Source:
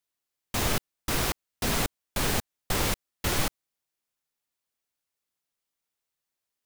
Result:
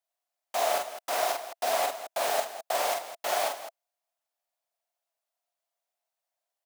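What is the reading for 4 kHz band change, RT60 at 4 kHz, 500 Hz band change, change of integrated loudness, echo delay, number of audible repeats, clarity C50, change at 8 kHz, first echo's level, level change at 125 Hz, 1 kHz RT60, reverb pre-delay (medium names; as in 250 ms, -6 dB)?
-3.5 dB, no reverb, +6.0 dB, -0.5 dB, 41 ms, 3, no reverb, -3.5 dB, -6.0 dB, under -30 dB, no reverb, no reverb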